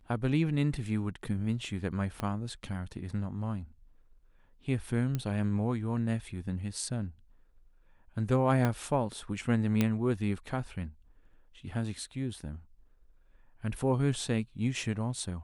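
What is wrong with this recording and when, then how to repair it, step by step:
2.2 pop -20 dBFS
5.15 pop -19 dBFS
8.65 pop -16 dBFS
9.81 pop -13 dBFS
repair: de-click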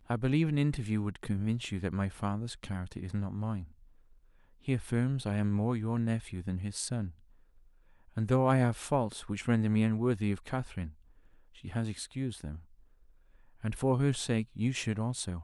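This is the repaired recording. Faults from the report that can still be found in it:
2.2 pop
8.65 pop

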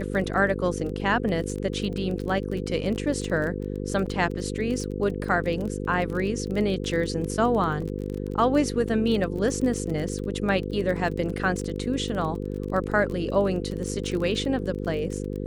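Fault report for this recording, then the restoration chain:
buzz 50 Hz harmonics 10 -31 dBFS
crackle 23/s -30 dBFS
4.06 gap 4.7 ms
7.82 gap 2 ms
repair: de-click; de-hum 50 Hz, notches 10; interpolate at 4.06, 4.7 ms; interpolate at 7.82, 2 ms

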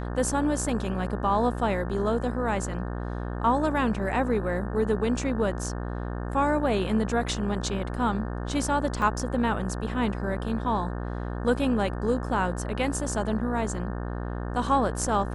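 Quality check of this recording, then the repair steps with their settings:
buzz 60 Hz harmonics 30 -32 dBFS
9.02 gap 2.2 ms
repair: de-hum 60 Hz, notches 30; interpolate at 9.02, 2.2 ms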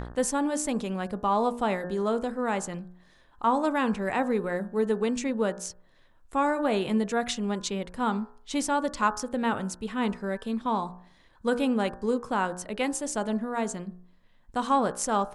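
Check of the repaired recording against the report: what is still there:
none

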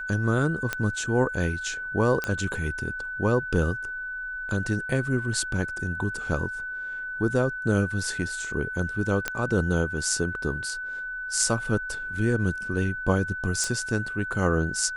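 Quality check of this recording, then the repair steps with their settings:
tone 1500 Hz -31 dBFS
0.73 pop -11 dBFS
2.24 pop -13 dBFS
9.28 pop -10 dBFS
13.64 pop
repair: de-click; notch 1500 Hz, Q 30

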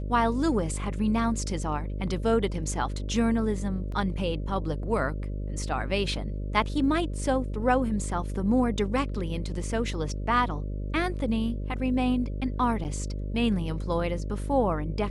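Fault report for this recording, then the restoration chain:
buzz 50 Hz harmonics 12 -32 dBFS
3.92 gap 2.7 ms
12.84–12.85 gap 9 ms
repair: de-hum 50 Hz, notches 12; interpolate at 3.92, 2.7 ms; interpolate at 12.84, 9 ms

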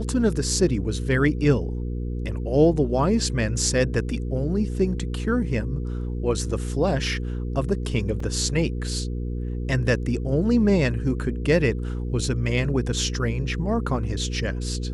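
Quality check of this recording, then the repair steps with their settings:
hum 60 Hz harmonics 8 -28 dBFS
8.2 gap 3.2 ms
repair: de-hum 60 Hz, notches 8; interpolate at 8.2, 3.2 ms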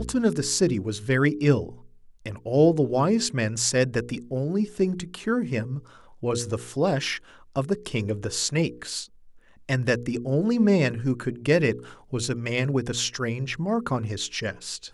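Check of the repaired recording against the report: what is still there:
none

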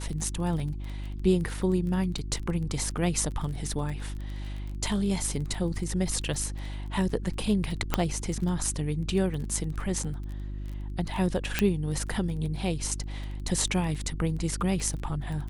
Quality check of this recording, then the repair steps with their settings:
crackle 20/s -34 dBFS
hum 50 Hz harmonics 7 -35 dBFS
7.94 pop -8 dBFS
11.59 pop -8 dBFS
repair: de-click; de-hum 50 Hz, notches 7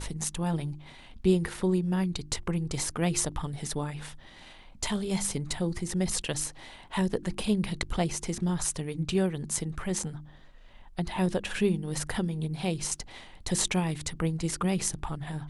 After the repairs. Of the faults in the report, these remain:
none

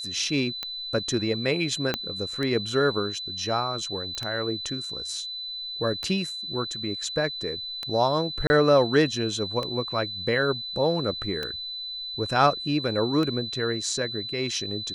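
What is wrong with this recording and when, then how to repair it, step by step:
tick 33 1/3 rpm -16 dBFS
tone 4000 Hz -32 dBFS
1.94 pop -10 dBFS
4.15 pop -19 dBFS
8.47–8.5 gap 30 ms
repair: de-click; notch 4000 Hz, Q 30; interpolate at 8.47, 30 ms

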